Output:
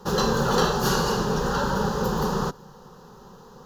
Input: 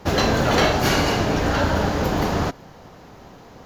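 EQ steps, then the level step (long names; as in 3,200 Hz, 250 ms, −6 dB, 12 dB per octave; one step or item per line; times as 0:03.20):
phaser with its sweep stopped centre 440 Hz, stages 8
0.0 dB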